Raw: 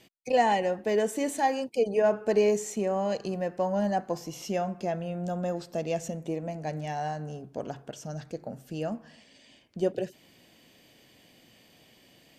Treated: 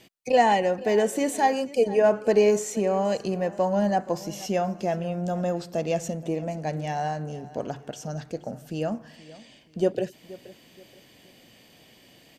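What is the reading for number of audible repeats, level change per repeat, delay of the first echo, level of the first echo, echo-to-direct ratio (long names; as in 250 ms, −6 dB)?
2, −9.5 dB, 476 ms, −19.0 dB, −18.5 dB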